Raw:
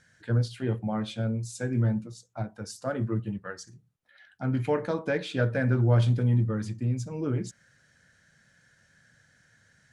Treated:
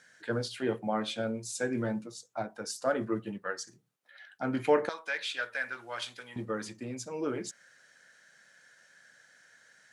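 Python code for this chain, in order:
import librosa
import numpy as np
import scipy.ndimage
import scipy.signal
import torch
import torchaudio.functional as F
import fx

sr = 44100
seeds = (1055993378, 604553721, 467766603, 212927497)

y = fx.highpass(x, sr, hz=fx.steps((0.0, 330.0), (4.89, 1500.0), (6.36, 430.0)), slope=12)
y = y * librosa.db_to_amplitude(3.5)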